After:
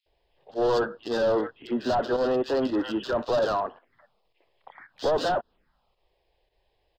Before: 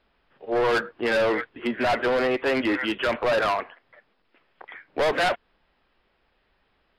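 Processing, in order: touch-sensitive phaser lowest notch 220 Hz, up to 2.2 kHz, full sweep at -29.5 dBFS; bands offset in time highs, lows 60 ms, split 2.3 kHz; volume shaper 111 bpm, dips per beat 1, -9 dB, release 92 ms

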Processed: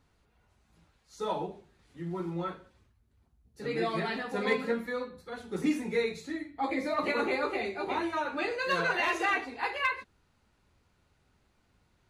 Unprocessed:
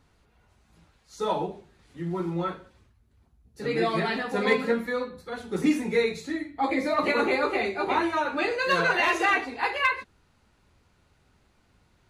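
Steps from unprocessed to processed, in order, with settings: 7.50–8.13 s: dynamic bell 1.3 kHz, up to -4 dB, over -34 dBFS, Q 1.3; trim -5.5 dB

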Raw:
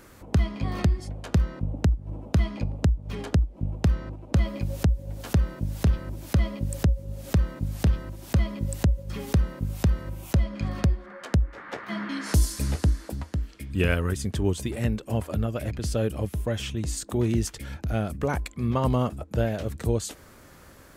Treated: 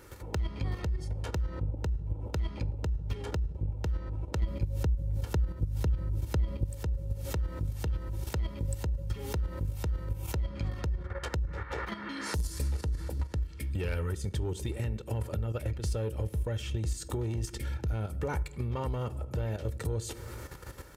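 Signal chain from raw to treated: reverberation RT60 0.90 s, pre-delay 4 ms, DRR 15 dB; saturation -18 dBFS, distortion -14 dB; 4.43–6.64 s: bass shelf 320 Hz +8 dB; level held to a coarse grid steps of 10 dB; high-pass 52 Hz; bass shelf 77 Hz +9.5 dB; compression 3:1, threshold -39 dBFS, peak gain reduction 17 dB; comb 2.2 ms, depth 48%; trim +5.5 dB

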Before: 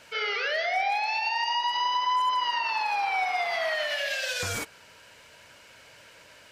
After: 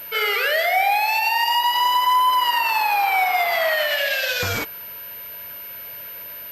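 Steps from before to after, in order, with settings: class-D stage that switches slowly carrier 13 kHz; trim +8 dB

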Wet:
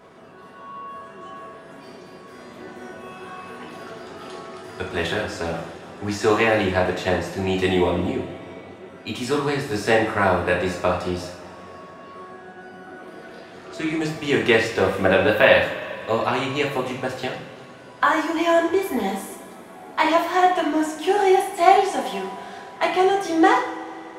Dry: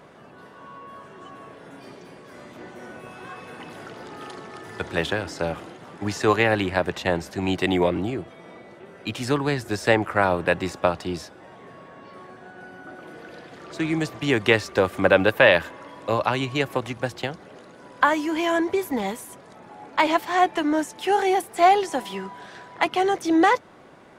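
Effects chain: two-slope reverb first 0.54 s, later 3.6 s, from -19 dB, DRR -3 dB; trim -3 dB

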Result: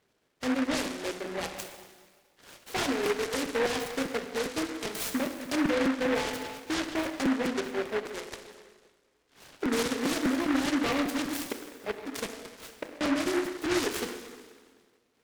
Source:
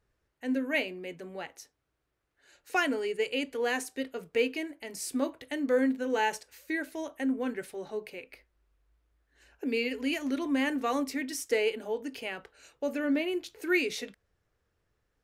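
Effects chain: transient shaper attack +1 dB, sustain -8 dB; 11.39–13.01 s: inverted gate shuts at -24 dBFS, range -39 dB; Chebyshev band-pass 230–6300 Hz, order 2; in parallel at -3 dB: compression, threshold -41 dBFS, peak gain reduction 18 dB; on the sum: random-step tremolo; peak limiter -27.5 dBFS, peak gain reduction 13 dB; plate-style reverb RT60 1.7 s, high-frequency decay 0.9×, DRR 4 dB; crackling interface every 0.20 s, samples 256, repeat; delay time shaken by noise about 1.3 kHz, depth 0.16 ms; trim +6 dB

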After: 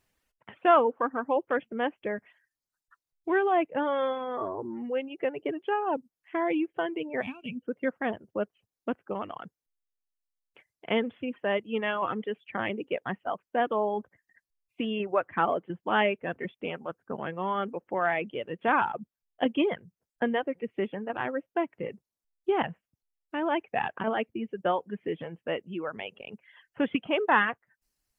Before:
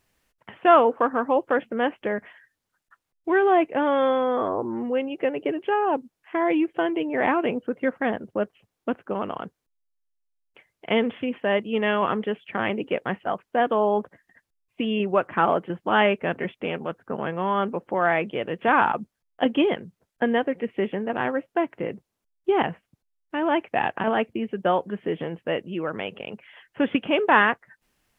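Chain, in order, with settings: reverb removal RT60 1.4 s; time-frequency box 7.21–7.62 s, 270–2200 Hz -21 dB; trim -4.5 dB

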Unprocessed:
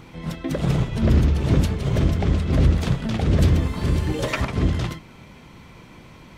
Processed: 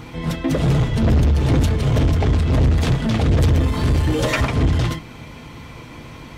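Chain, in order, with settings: in parallel at -8 dB: hard clipper -24 dBFS, distortion -5 dB; on the sum: comb of notches 190 Hz; saturation -17 dBFS, distortion -11 dB; trim +6 dB

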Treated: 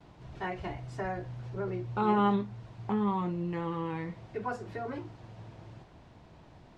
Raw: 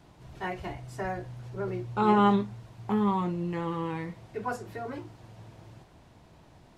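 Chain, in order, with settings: gate with hold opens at -49 dBFS; in parallel at +1 dB: compression, threshold -35 dBFS, peak gain reduction 16 dB; on the sum: distance through air 84 m; trim -5.5 dB

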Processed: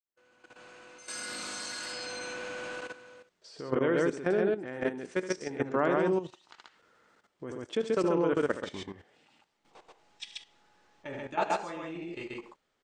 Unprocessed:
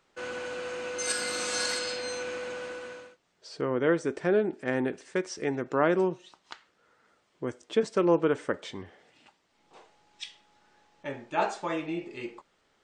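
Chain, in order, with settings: fade-in on the opening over 2.84 s; loudspeakers at several distances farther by 26 m -9 dB, 46 m -1 dB; level held to a coarse grid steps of 13 dB

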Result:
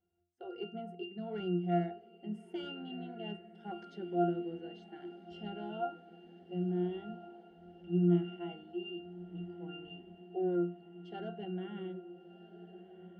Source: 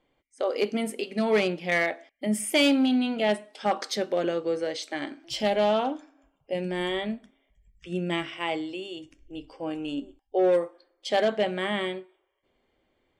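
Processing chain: pitch-class resonator F, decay 0.45 s; echo that smears into a reverb 1409 ms, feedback 63%, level -15 dB; trim +7.5 dB

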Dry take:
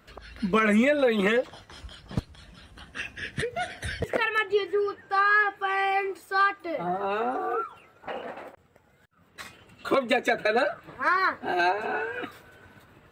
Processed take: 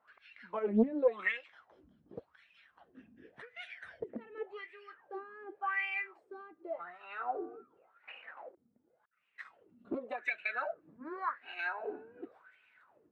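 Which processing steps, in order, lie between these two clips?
wah-wah 0.89 Hz 220–2600 Hz, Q 6.7; loudspeaker Doppler distortion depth 0.75 ms

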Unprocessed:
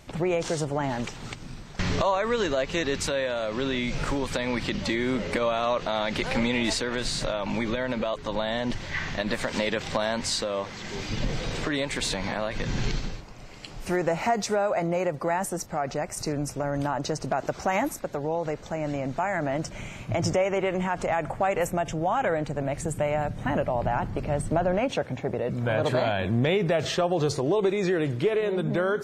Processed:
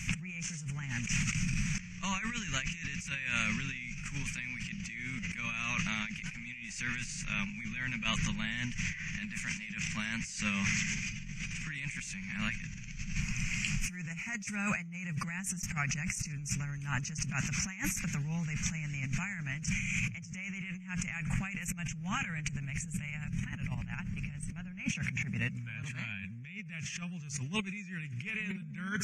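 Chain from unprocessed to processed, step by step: FFT filter 100 Hz 0 dB, 190 Hz +8 dB, 320 Hz -23 dB, 600 Hz -30 dB, 2.5 kHz +12 dB, 3.9 kHz -13 dB, 6.2 kHz +11 dB, 11 kHz -4 dB; compressor with a negative ratio -38 dBFS, ratio -1

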